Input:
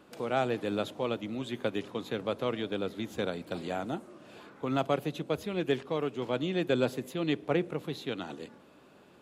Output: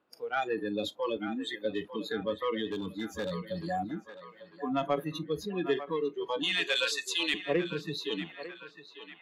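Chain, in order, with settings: 6.43–7.34 weighting filter ITU-R 468; spectral noise reduction 29 dB; high shelf 3400 Hz -11.5 dB; in parallel at +1 dB: negative-ratio compressor -43 dBFS, ratio -1; on the sum: overdrive pedal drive 10 dB, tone 5800 Hz, clips at -16.5 dBFS; 2.67–3.38 hard clip -29.5 dBFS, distortion -27 dB; narrowing echo 0.899 s, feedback 56%, band-pass 1300 Hz, level -9 dB; reverb, pre-delay 3 ms, DRR 20 dB

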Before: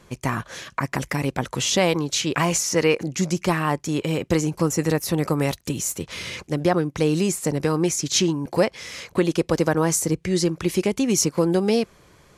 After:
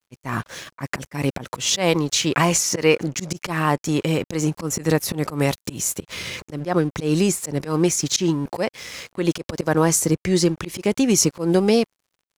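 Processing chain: crossover distortion -45 dBFS; auto swell 0.122 s; gain +3.5 dB

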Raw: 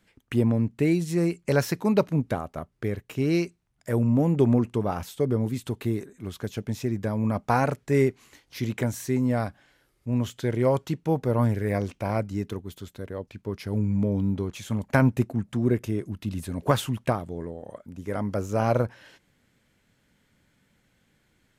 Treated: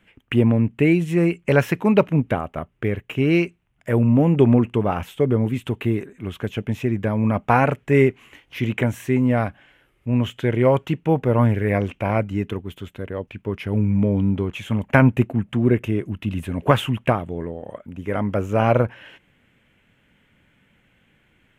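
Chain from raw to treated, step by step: resonant high shelf 3600 Hz -8 dB, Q 3; gain +5.5 dB

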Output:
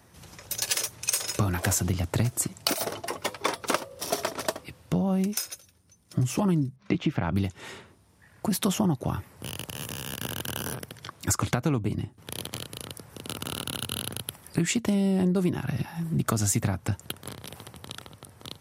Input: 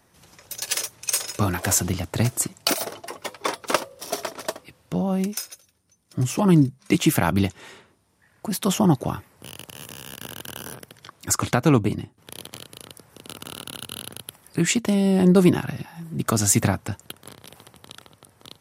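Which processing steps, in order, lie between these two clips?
HPF 58 Hz; low shelf 100 Hz +11.5 dB; compressor 6:1, threshold -25 dBFS, peak gain reduction 15.5 dB; 6.76–7.32 air absorption 240 m; gain +2.5 dB

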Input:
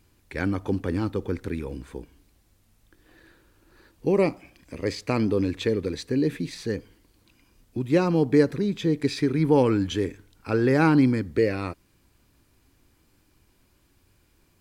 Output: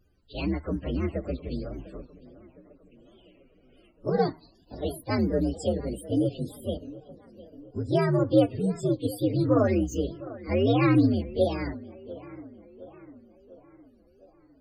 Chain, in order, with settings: inharmonic rescaling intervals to 129%; on a send: tape echo 0.705 s, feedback 59%, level -16.5 dB, low-pass 2500 Hz; on the sum: loudest bins only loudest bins 64; wow and flutter 80 cents

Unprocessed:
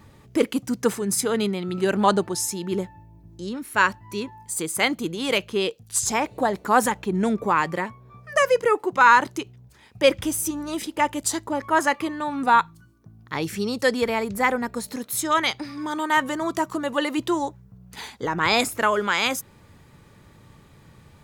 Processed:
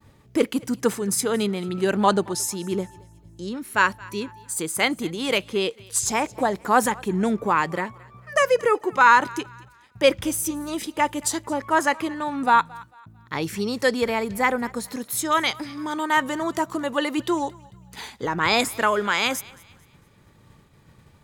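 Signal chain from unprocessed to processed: expander -46 dBFS; thinning echo 0.223 s, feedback 38%, high-pass 550 Hz, level -22 dB

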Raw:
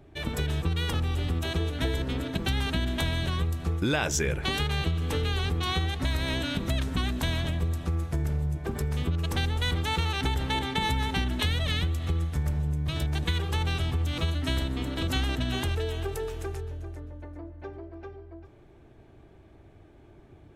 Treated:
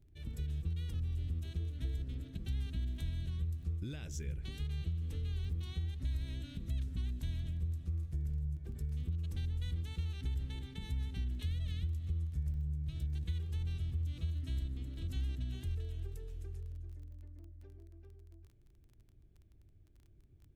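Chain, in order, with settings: passive tone stack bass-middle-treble 10-0-1; crackle 16/s -53 dBFS; gain +1 dB

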